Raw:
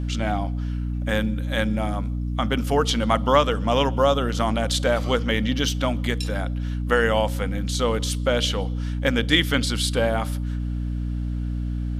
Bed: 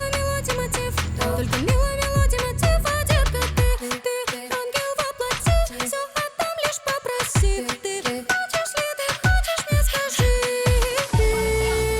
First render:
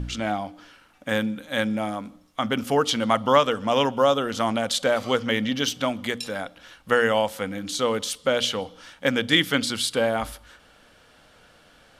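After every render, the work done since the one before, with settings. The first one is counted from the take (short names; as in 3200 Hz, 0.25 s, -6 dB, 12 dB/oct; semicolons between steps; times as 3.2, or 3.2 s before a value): de-hum 60 Hz, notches 5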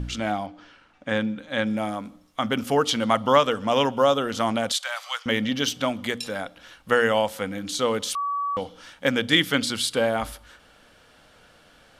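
0.46–1.67 air absorption 91 m; 4.72–5.26 Bessel high-pass 1300 Hz, order 8; 8.15–8.57 bleep 1140 Hz -23.5 dBFS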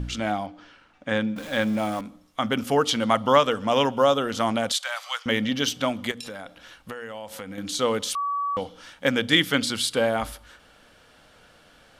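1.36–2.01 zero-crossing step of -34.5 dBFS; 6.11–7.58 compressor 10:1, threshold -32 dBFS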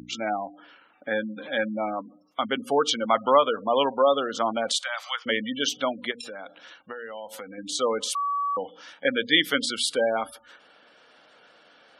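spectral gate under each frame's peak -20 dB strong; HPF 310 Hz 12 dB/oct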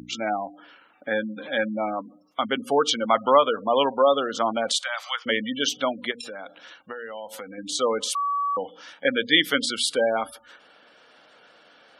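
gain +1.5 dB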